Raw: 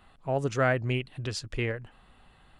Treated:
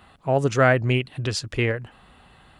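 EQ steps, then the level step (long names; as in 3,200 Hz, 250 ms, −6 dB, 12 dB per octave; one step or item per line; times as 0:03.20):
high-pass filter 52 Hz
+7.5 dB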